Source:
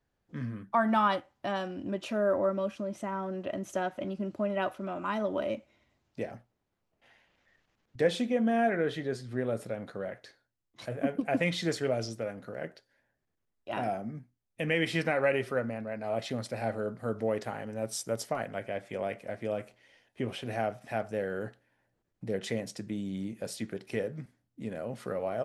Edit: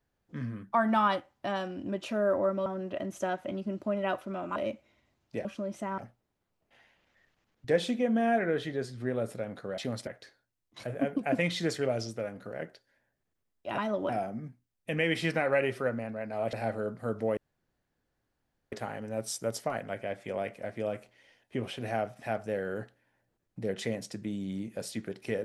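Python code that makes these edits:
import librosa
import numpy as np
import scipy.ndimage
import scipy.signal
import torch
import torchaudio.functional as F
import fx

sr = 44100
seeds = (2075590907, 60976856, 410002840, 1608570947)

y = fx.edit(x, sr, fx.move(start_s=2.66, length_s=0.53, to_s=6.29),
    fx.move(start_s=5.09, length_s=0.31, to_s=13.8),
    fx.move(start_s=16.24, length_s=0.29, to_s=10.09),
    fx.insert_room_tone(at_s=17.37, length_s=1.35), tone=tone)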